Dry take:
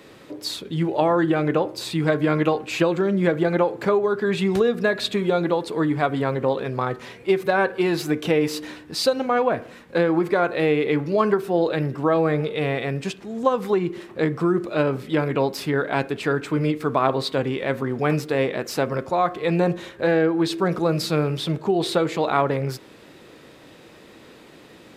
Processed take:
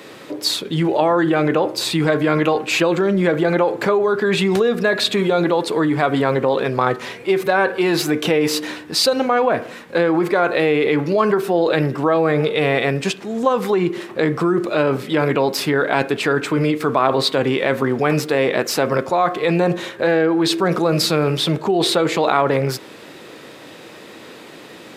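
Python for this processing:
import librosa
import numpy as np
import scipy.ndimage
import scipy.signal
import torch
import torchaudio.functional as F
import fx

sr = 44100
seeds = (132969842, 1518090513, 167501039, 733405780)

p1 = scipy.signal.sosfilt(scipy.signal.butter(2, 97.0, 'highpass', fs=sr, output='sos'), x)
p2 = fx.low_shelf(p1, sr, hz=260.0, db=-6.0)
p3 = fx.over_compress(p2, sr, threshold_db=-26.0, ratio=-1.0)
p4 = p2 + (p3 * 10.0 ** (-0.5 / 20.0))
y = p4 * 10.0 ** (2.0 / 20.0)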